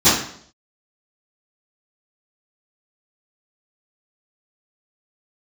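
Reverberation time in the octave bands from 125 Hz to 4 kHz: 0.65, 0.65, 0.65, 0.60, 0.55, 0.55 s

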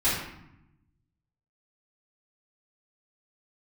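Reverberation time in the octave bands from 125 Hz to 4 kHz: 1.6, 1.3, 0.75, 0.85, 0.75, 0.55 s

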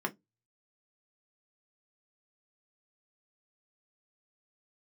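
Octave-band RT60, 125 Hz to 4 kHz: 0.30, 0.20, 0.20, 0.15, 0.10, 0.15 s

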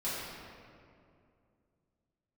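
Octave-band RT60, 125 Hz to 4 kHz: 3.2, 3.0, 2.6, 2.2, 1.9, 1.3 s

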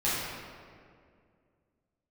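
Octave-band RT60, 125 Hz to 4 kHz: 2.6, 2.7, 2.4, 1.9, 1.7, 1.2 s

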